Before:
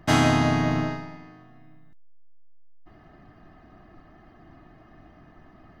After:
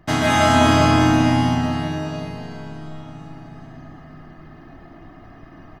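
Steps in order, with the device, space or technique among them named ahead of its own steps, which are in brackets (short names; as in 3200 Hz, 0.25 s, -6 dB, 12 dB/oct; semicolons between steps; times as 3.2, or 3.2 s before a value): cave (echo 0.368 s -9 dB; reverb RT60 5.0 s, pre-delay 0.112 s, DRR -8.5 dB); gain -1 dB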